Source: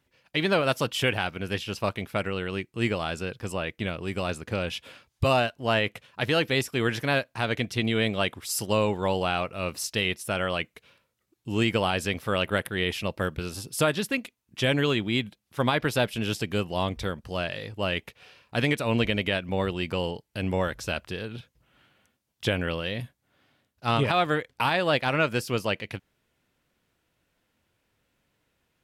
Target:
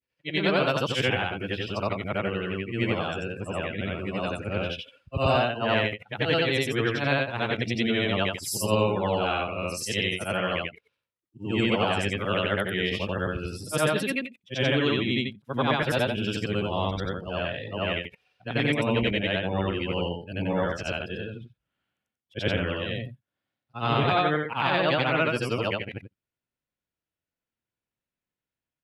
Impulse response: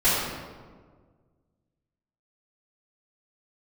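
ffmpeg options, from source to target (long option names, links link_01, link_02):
-af "afftfilt=real='re':imag='-im':win_size=8192:overlap=0.75,afftdn=noise_reduction=20:noise_floor=-46,acontrast=85,volume=-2dB"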